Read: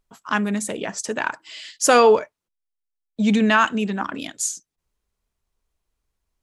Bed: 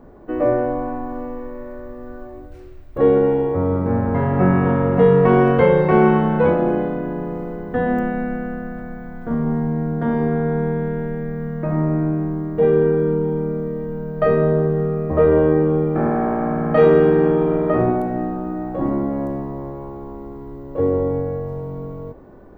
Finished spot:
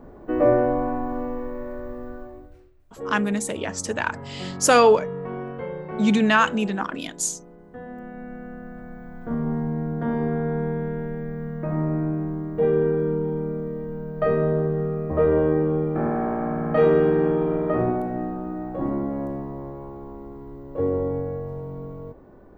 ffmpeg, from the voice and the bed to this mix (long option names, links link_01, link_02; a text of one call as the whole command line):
ffmpeg -i stem1.wav -i stem2.wav -filter_complex "[0:a]adelay=2800,volume=-1dB[link_01];[1:a]volume=13.5dB,afade=type=out:start_time=1.96:duration=0.76:silence=0.11885,afade=type=in:start_time=7.96:duration=1.34:silence=0.211349[link_02];[link_01][link_02]amix=inputs=2:normalize=0" out.wav